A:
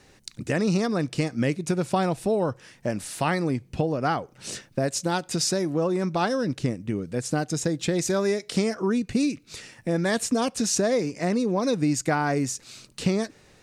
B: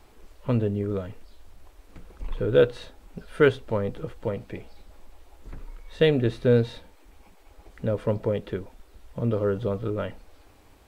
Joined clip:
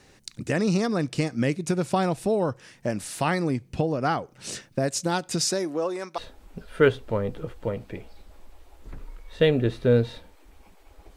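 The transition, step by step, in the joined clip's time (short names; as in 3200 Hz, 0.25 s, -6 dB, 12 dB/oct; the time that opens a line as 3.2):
A
5.48–6.18 HPF 210 Hz -> 720 Hz
6.18 switch to B from 2.78 s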